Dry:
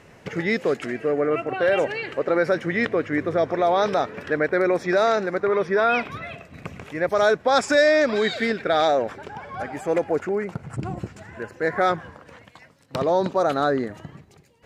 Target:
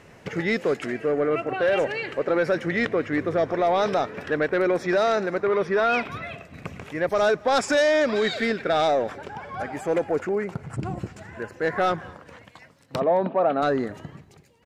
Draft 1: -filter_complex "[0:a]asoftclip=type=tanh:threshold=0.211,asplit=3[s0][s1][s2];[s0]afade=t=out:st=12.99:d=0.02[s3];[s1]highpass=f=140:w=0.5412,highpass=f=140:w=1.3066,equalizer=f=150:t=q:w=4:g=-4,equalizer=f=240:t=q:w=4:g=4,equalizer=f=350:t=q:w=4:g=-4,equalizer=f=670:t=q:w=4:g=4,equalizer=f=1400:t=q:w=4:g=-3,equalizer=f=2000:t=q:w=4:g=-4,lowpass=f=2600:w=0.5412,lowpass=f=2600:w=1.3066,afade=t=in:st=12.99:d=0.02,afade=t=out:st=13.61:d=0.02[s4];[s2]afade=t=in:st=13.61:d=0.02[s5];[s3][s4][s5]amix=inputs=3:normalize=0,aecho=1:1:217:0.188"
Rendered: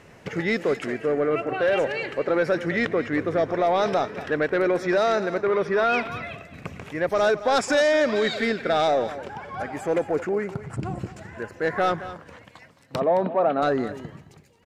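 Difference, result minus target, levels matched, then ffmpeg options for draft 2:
echo-to-direct +11 dB
-filter_complex "[0:a]asoftclip=type=tanh:threshold=0.211,asplit=3[s0][s1][s2];[s0]afade=t=out:st=12.99:d=0.02[s3];[s1]highpass=f=140:w=0.5412,highpass=f=140:w=1.3066,equalizer=f=150:t=q:w=4:g=-4,equalizer=f=240:t=q:w=4:g=4,equalizer=f=350:t=q:w=4:g=-4,equalizer=f=670:t=q:w=4:g=4,equalizer=f=1400:t=q:w=4:g=-3,equalizer=f=2000:t=q:w=4:g=-4,lowpass=f=2600:w=0.5412,lowpass=f=2600:w=1.3066,afade=t=in:st=12.99:d=0.02,afade=t=out:st=13.61:d=0.02[s4];[s2]afade=t=in:st=13.61:d=0.02[s5];[s3][s4][s5]amix=inputs=3:normalize=0,aecho=1:1:217:0.0531"

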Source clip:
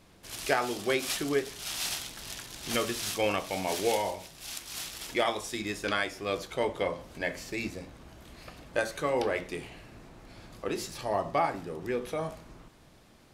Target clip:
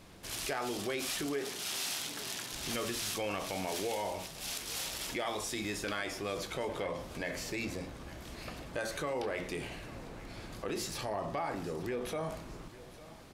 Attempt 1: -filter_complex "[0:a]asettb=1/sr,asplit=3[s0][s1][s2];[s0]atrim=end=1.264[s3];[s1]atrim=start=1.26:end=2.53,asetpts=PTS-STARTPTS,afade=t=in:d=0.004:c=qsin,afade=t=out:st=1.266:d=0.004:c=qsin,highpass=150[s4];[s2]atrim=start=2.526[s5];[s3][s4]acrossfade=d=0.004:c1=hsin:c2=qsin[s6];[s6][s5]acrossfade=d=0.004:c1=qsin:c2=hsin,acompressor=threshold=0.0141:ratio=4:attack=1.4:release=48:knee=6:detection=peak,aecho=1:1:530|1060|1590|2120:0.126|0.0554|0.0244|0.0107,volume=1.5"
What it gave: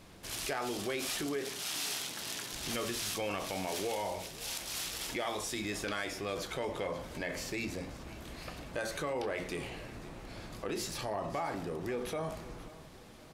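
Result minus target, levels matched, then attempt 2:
echo 323 ms early
-filter_complex "[0:a]asettb=1/sr,asplit=3[s0][s1][s2];[s0]atrim=end=1.264[s3];[s1]atrim=start=1.26:end=2.53,asetpts=PTS-STARTPTS,afade=t=in:d=0.004:c=qsin,afade=t=out:st=1.266:d=0.004:c=qsin,highpass=150[s4];[s2]atrim=start=2.526[s5];[s3][s4]acrossfade=d=0.004:c1=hsin:c2=qsin[s6];[s6][s5]acrossfade=d=0.004:c1=qsin:c2=hsin,acompressor=threshold=0.0141:ratio=4:attack=1.4:release=48:knee=6:detection=peak,aecho=1:1:853|1706|2559|3412:0.126|0.0554|0.0244|0.0107,volume=1.5"

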